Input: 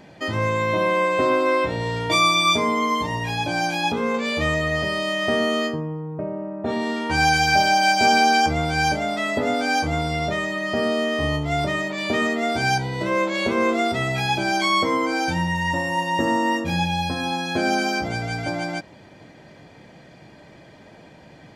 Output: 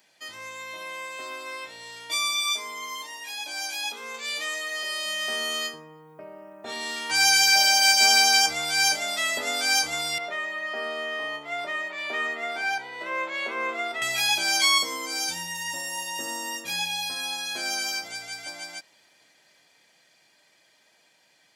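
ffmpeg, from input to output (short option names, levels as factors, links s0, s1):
-filter_complex "[0:a]asettb=1/sr,asplit=3[s0][s1][s2];[s0]atrim=end=2.434[s3];[s1]atrim=start=2.43:end=5.06,asetpts=PTS-STARTPTS,afade=t=in:d=0.004:c=qsin,afade=t=out:st=2.626:d=0.004:c=qsin,highpass=f=250:w=0.5412,highpass=f=250:w=1.3066[s4];[s2]atrim=start=5.056[s5];[s3][s4]acrossfade=d=0.004:c1=hsin:c2=qsin[s6];[s6][s5]acrossfade=d=0.004:c1=qsin:c2=hsin,asettb=1/sr,asplit=3[s7][s8][s9];[s7]atrim=end=10.184[s10];[s8]atrim=start=10.18:end=14.02,asetpts=PTS-STARTPTS,afade=t=in:d=0.004:c=qsin,afade=t=out:st=3.836:d=0.004:c=qsin,acrossover=split=250 2500:gain=0.178 1 0.0794[s11][s12][s13];[s11][s12][s13]amix=inputs=3:normalize=0[s14];[s9]atrim=start=14.016[s15];[s10][s14]acrossfade=d=0.004:c1=hsin:c2=qsin[s16];[s16][s15]acrossfade=d=0.004:c1=qsin:c2=hsin,asettb=1/sr,asplit=3[s17][s18][s19];[s17]atrim=end=14.784[s20];[s18]atrim=start=14.78:end=16.64,asetpts=PTS-STARTPTS,afade=t=in:d=0.004:c=qsin,afade=t=out:st=1.856:d=0.004:c=qsin,equalizer=f=1600:t=o:w=2.3:g=-7[s21];[s19]atrim=start=16.636[s22];[s20][s21]acrossfade=d=0.004:c1=hsin:c2=qsin[s23];[s23][s22]acrossfade=d=0.004:c1=qsin:c2=hsin,aderivative,dynaudnorm=f=510:g=21:m=3.55"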